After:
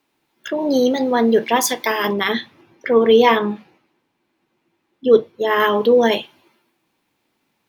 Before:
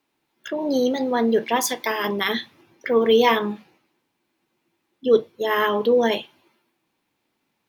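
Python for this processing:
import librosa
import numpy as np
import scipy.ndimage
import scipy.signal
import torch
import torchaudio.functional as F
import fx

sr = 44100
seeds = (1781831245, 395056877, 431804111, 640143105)

y = fx.high_shelf(x, sr, hz=4600.0, db=-9.0, at=(2.13, 5.6))
y = F.gain(torch.from_numpy(y), 4.5).numpy()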